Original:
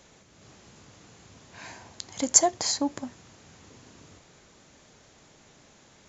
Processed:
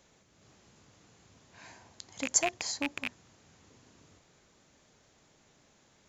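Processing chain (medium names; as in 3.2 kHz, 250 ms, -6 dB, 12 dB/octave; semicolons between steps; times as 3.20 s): rattle on loud lows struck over -41 dBFS, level -10 dBFS; trim -8.5 dB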